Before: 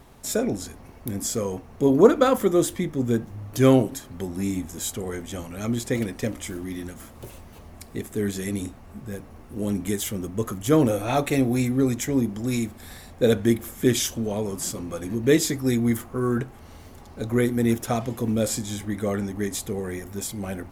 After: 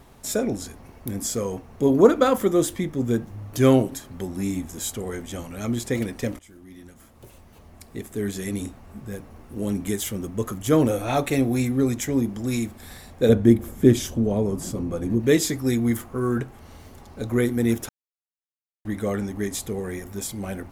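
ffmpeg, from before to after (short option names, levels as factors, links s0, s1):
-filter_complex "[0:a]asettb=1/sr,asplit=3[s0][s1][s2];[s0]atrim=end=13.294[s3];[s1]atrim=start=13.29:end=15.2,asetpts=PTS-STARTPTS,afade=t=in:d=0.004:c=qsin,afade=t=out:st=1.906:d=0.004:c=qsin,tiltshelf=f=860:g=6.5[s4];[s2]atrim=start=15.196[s5];[s3][s4]acrossfade=d=0.004:c1=hsin:c2=qsin[s6];[s6][s5]acrossfade=d=0.004:c1=qsin:c2=hsin,asplit=4[s7][s8][s9][s10];[s7]atrim=end=6.39,asetpts=PTS-STARTPTS,afade=t=out:st=6.386:d=0.004:c=hsin:silence=0.112202[s11];[s8]atrim=start=6.39:end=17.89,asetpts=PTS-STARTPTS,afade=t=in:d=2.23:silence=0.112202,afade=t=out:st=11.496:d=0.004:c=hsin[s12];[s9]atrim=start=17.89:end=18.85,asetpts=PTS-STARTPTS,volume=0[s13];[s10]atrim=start=18.85,asetpts=PTS-STARTPTS,afade=t=in:d=0.004:c=hsin[s14];[s11][s12][s13][s14]concat=n=4:v=0:a=1"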